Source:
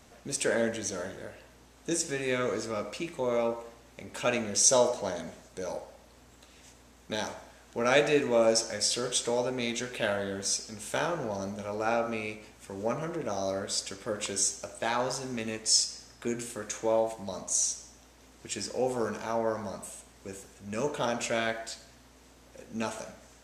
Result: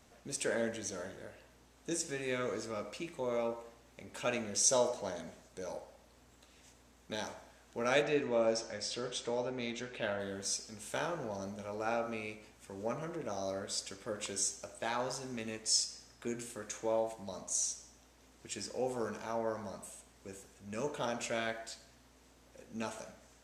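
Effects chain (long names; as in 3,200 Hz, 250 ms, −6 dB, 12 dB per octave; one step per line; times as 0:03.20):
0:08.02–0:10.20: high-frequency loss of the air 91 metres
level −6.5 dB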